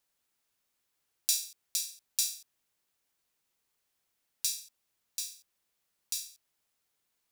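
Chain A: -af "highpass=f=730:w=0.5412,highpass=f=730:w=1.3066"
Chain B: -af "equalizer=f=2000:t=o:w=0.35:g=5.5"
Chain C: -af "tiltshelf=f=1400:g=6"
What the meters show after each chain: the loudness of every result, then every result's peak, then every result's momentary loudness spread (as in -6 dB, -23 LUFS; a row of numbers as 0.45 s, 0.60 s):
-33.5 LUFS, -33.5 LUFS, -39.0 LUFS; -7.0 dBFS, -6.0 dBFS, -11.0 dBFS; 11 LU, 11 LU, 11 LU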